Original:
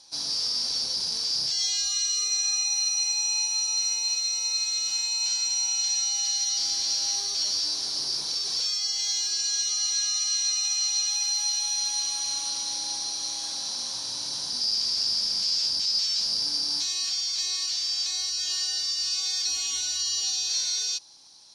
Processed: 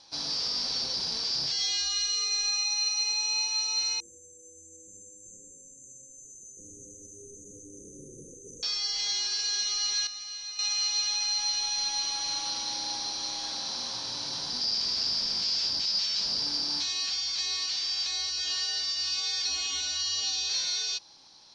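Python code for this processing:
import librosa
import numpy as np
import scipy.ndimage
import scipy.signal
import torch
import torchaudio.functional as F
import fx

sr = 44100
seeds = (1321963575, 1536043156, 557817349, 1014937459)

y = fx.brickwall_bandstop(x, sr, low_hz=550.0, high_hz=6000.0, at=(4.0, 8.63))
y = fx.edit(y, sr, fx.clip_gain(start_s=10.07, length_s=0.52, db=-10.5), tone=tone)
y = scipy.signal.sosfilt(scipy.signal.butter(2, 3700.0, 'lowpass', fs=sr, output='sos'), y)
y = y * librosa.db_to_amplitude(3.5)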